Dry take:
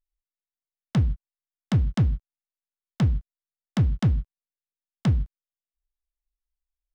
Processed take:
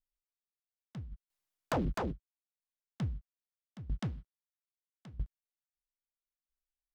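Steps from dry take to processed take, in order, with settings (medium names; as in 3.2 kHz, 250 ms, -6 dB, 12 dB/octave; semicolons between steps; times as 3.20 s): 1.11–2.11 s: sine folder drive 10 dB -> 15 dB, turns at -12.5 dBFS; 4.01–5.14 s: bass shelf 140 Hz -11.5 dB; sawtooth tremolo in dB decaying 0.77 Hz, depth 20 dB; trim -7 dB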